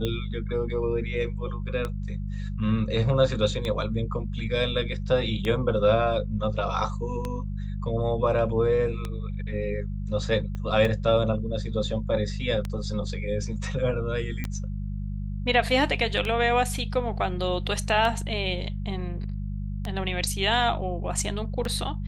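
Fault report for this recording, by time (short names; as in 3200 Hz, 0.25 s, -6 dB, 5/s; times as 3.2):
hum 50 Hz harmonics 4 -31 dBFS
tick 33 1/3 rpm -16 dBFS
10.55 pop -23 dBFS
14.44 pop -17 dBFS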